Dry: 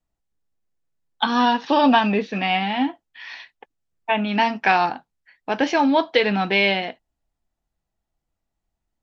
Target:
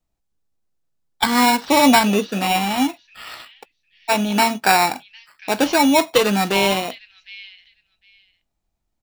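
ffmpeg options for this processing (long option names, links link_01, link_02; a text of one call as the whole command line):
ffmpeg -i in.wav -filter_complex "[0:a]acrossover=split=2300[link_01][link_02];[link_01]acrusher=samples=14:mix=1:aa=0.000001[link_03];[link_02]aecho=1:1:755|1510:0.158|0.0254[link_04];[link_03][link_04]amix=inputs=2:normalize=0,volume=3dB" out.wav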